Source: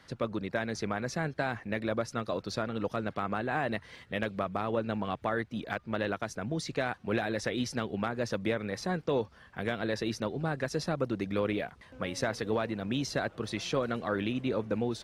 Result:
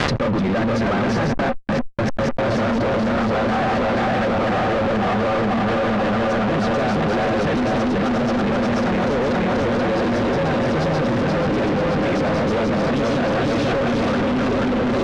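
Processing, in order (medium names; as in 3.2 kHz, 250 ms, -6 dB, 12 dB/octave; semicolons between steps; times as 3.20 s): backward echo that repeats 242 ms, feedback 84%, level -1.5 dB; treble shelf 4.9 kHz +7 dB; repeats whose band climbs or falls 157 ms, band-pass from 2.9 kHz, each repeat -1.4 oct, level -9 dB; 1.31–2.80 s: trance gate ".x..x.x.xxxx..x." 151 bpm -60 dB; small resonant body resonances 240/540/760/1200 Hz, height 7 dB, ringing for 100 ms; fuzz box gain 47 dB, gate -53 dBFS; peak limiter -19.5 dBFS, peak gain reduction 9 dB; tape spacing loss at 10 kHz 31 dB; level flattener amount 100%; trim +2.5 dB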